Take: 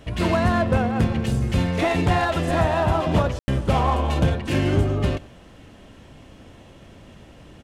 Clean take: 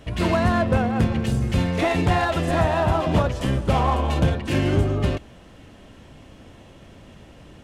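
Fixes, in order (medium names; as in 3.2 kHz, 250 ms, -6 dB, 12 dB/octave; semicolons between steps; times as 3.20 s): room tone fill 3.39–3.48 s; inverse comb 92 ms -21.5 dB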